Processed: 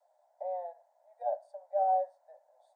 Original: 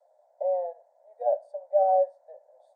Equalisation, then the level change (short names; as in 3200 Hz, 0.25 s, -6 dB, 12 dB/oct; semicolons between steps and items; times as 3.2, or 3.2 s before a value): HPF 760 Hz 24 dB/oct; 0.0 dB